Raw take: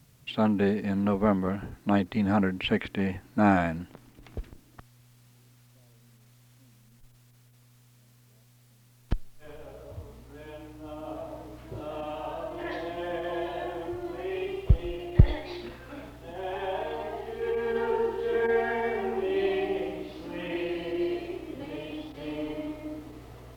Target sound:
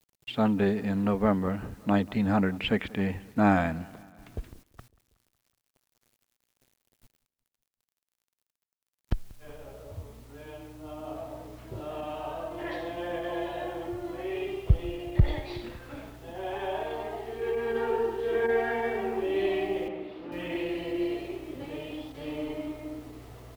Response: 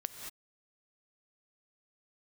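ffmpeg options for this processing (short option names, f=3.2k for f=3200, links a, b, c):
-filter_complex "[0:a]equalizer=f=88:t=o:w=0.59:g=2.5,agate=range=-10dB:threshold=-50dB:ratio=16:detection=peak,acrusher=bits=9:mix=0:aa=0.000001,asettb=1/sr,asplit=3[a][b][c];[a]atrim=end=19.884[d];[b]atrim=start=19.88:end=20.32,asetpts=PTS-STARTPTS,afade=t=in:d=0.004:c=qsin,afade=t=out:st=0.436:d=0.004:c=qsin,acrossover=split=160 3400:gain=0.251 1 0.0794[e][f][g];[e][f][g]amix=inputs=3:normalize=0[h];[c]atrim=start=20.316[i];[d][h]acrossfade=d=0.004:c1=hsin:c2=qsin[j];[j][i]acrossfade=d=0.004:c1=qsin:c2=hsin,aecho=1:1:185|370|555|740:0.0708|0.0425|0.0255|0.0153,alimiter=level_in=7dB:limit=-1dB:release=50:level=0:latency=1,volume=-7.5dB"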